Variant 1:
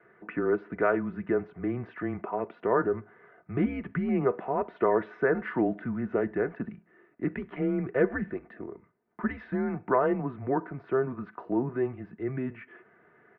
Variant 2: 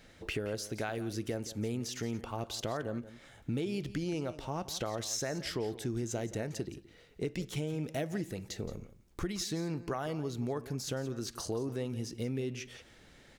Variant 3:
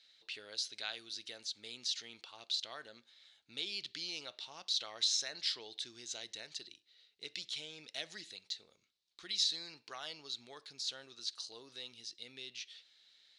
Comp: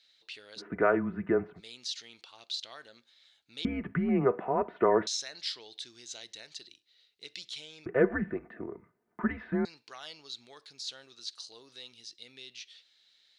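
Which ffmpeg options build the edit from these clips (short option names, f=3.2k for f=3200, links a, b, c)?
-filter_complex "[0:a]asplit=3[a][b][c];[2:a]asplit=4[d][e][f][g];[d]atrim=end=0.62[h];[a]atrim=start=0.56:end=1.61[i];[e]atrim=start=1.55:end=3.652[j];[b]atrim=start=3.648:end=5.072[k];[f]atrim=start=5.068:end=7.862[l];[c]atrim=start=7.858:end=9.652[m];[g]atrim=start=9.648[n];[h][i]acrossfade=d=0.06:c1=tri:c2=tri[o];[o][j]acrossfade=d=0.06:c1=tri:c2=tri[p];[p][k]acrossfade=d=0.004:c1=hsin:c2=hsin[q];[q][l]acrossfade=d=0.004:c1=hsin:c2=hsin[r];[r][m]acrossfade=d=0.004:c1=hsin:c2=hsin[s];[s][n]acrossfade=d=0.004:c1=hsin:c2=hsin"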